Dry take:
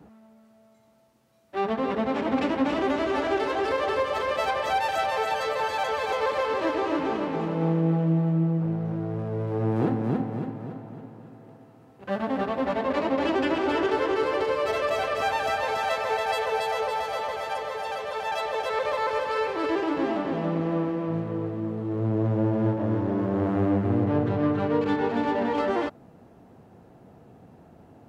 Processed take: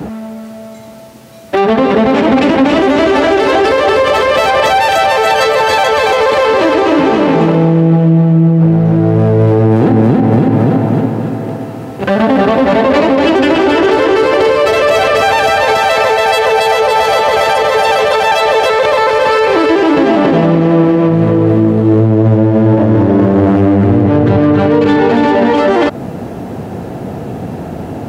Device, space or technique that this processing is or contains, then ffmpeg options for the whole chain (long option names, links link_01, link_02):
mastering chain: -af "highpass=55,equalizer=frequency=1100:width_type=o:width=0.92:gain=-3.5,acompressor=threshold=-30dB:ratio=2.5,asoftclip=type=hard:threshold=-22.5dB,alimiter=level_in=30.5dB:limit=-1dB:release=50:level=0:latency=1,volume=-1dB"